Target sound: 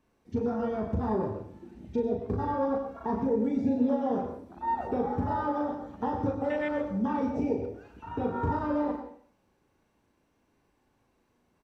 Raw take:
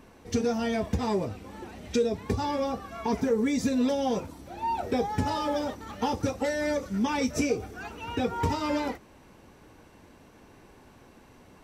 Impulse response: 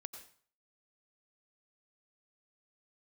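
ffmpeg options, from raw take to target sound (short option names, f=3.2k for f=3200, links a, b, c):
-filter_complex "[0:a]asplit=2[a][b];[b]adelay=37,volume=-4dB[c];[a][c]amix=inputs=2:normalize=0,acrossover=split=670|4300[d][e][f];[f]acompressor=threshold=-58dB:ratio=6[g];[d][e][g]amix=inputs=3:normalize=0,afwtdn=0.0316,asplit=2[h][i];[i]adelay=130,highpass=300,lowpass=3.4k,asoftclip=type=hard:threshold=-23dB,volume=-18dB[j];[h][j]amix=inputs=2:normalize=0[k];[1:a]atrim=start_sample=2205,asetrate=41895,aresample=44100[l];[k][l]afir=irnorm=-1:irlink=0,volume=1.5dB"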